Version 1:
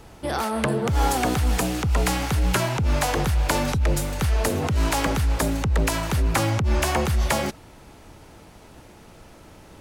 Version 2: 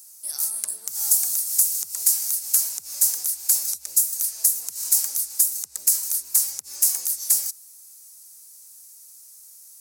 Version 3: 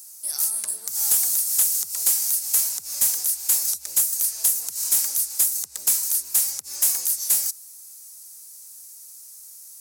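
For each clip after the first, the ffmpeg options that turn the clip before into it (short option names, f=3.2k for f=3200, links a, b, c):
-af "aexciter=amount=7.1:drive=8.4:freq=4.7k,aderivative,volume=-9.5dB"
-af "asoftclip=type=tanh:threshold=-16.5dB,volume=3.5dB"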